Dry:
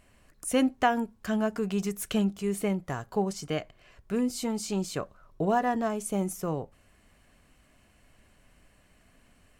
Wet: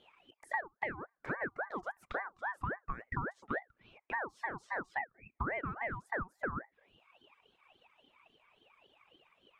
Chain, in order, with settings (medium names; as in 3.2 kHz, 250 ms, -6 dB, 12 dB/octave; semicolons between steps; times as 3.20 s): auto-wah 560–1800 Hz, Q 8.5, down, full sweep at -30 dBFS; compression 16:1, threshold -45 dBFS, peak gain reduction 17.5 dB; reverb removal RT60 1.3 s; ring modulator with a swept carrier 970 Hz, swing 45%, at 3.6 Hz; trim +15 dB